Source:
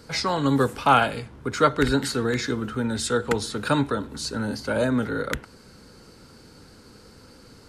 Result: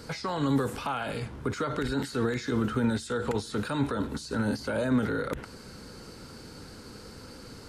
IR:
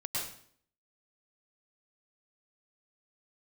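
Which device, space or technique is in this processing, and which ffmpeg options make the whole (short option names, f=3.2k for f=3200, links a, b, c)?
de-esser from a sidechain: -filter_complex "[0:a]asplit=2[a][b];[b]highpass=f=5.5k:p=1,apad=whole_len=339101[c];[a][c]sidechaincompress=threshold=-47dB:ratio=5:attack=1.9:release=34,volume=3.5dB"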